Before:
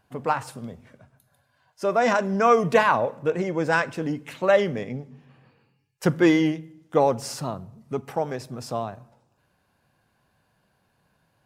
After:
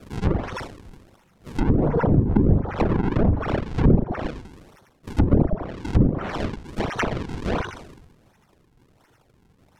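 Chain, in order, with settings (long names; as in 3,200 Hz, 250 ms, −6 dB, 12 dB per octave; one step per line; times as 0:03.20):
band-splitting scrambler in four parts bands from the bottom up 2341
parametric band 97 Hz +12 dB 0.86 octaves
all-pass dispersion lows, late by 58 ms, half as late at 2,100 Hz
on a send: flutter between parallel walls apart 8.3 metres, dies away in 1.4 s
on the sum: reverb reduction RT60 1 s
in parallel at 0 dB: downward compressor, threshold −44 dBFS, peak gain reduction 29.5 dB
on the sum: speed change +17%
echo ahead of the sound 114 ms −16 dB
sample-and-hold swept by an LFO 42×, swing 160% 1.4 Hz
low-shelf EQ 220 Hz +3 dB
treble cut that deepens with the level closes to 320 Hz, closed at −12.5 dBFS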